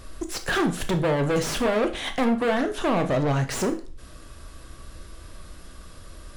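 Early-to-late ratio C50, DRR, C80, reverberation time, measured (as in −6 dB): 13.0 dB, 7.0 dB, 18.0 dB, 0.40 s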